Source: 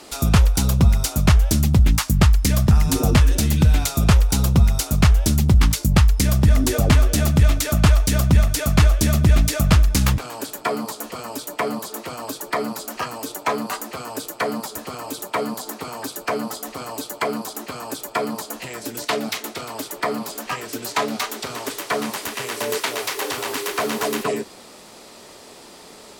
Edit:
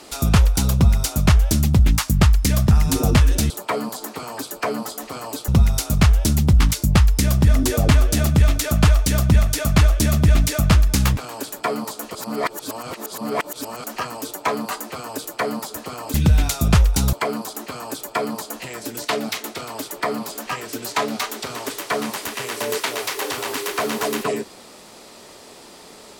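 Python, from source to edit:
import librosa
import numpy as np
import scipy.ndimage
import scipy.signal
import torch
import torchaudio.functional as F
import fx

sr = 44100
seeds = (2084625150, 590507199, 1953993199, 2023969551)

y = fx.edit(x, sr, fx.swap(start_s=3.5, length_s=0.99, other_s=15.15, other_length_s=1.98),
    fx.reverse_span(start_s=11.16, length_s=1.69), tone=tone)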